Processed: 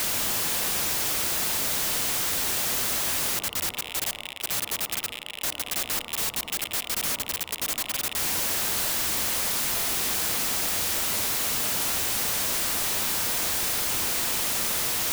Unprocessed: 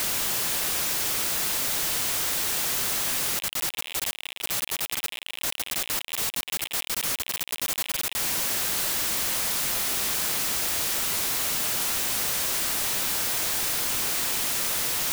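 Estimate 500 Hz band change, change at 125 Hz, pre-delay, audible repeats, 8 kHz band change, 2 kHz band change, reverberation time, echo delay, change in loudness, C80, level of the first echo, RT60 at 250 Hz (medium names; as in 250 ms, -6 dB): +1.5 dB, +2.0 dB, 36 ms, no echo, 0.0 dB, 0.0 dB, 1.2 s, no echo, 0.0 dB, 13.0 dB, no echo, 1.3 s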